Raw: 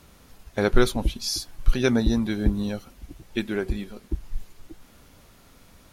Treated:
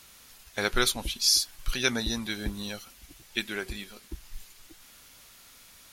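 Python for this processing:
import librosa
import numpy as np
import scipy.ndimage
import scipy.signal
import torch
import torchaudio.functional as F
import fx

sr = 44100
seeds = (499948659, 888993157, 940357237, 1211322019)

y = fx.tilt_shelf(x, sr, db=-9.5, hz=1100.0)
y = y * 10.0 ** (-2.5 / 20.0)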